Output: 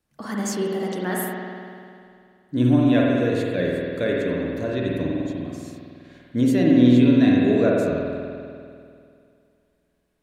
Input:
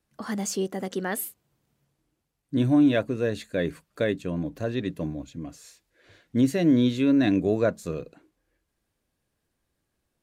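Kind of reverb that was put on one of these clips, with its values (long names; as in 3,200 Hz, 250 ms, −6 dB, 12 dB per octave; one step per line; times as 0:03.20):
spring reverb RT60 2.4 s, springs 49 ms, chirp 45 ms, DRR −3 dB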